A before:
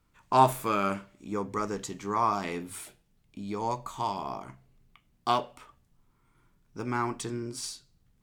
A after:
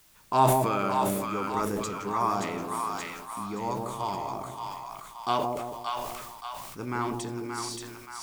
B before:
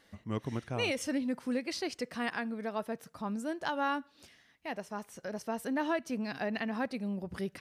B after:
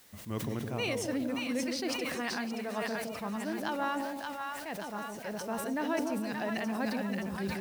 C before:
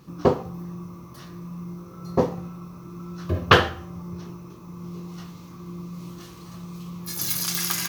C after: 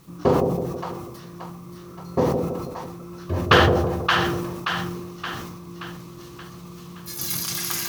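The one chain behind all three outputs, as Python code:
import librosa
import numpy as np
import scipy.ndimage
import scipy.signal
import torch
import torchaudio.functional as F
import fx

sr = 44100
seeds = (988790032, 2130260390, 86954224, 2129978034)

p1 = fx.echo_split(x, sr, split_hz=770.0, low_ms=163, high_ms=575, feedback_pct=52, wet_db=-4)
p2 = fx.vibrato(p1, sr, rate_hz=0.64, depth_cents=11.0)
p3 = fx.quant_dither(p2, sr, seeds[0], bits=8, dither='triangular')
p4 = p2 + (p3 * 10.0 ** (-7.0 / 20.0))
p5 = fx.sustainer(p4, sr, db_per_s=33.0)
y = p5 * 10.0 ** (-5.0 / 20.0)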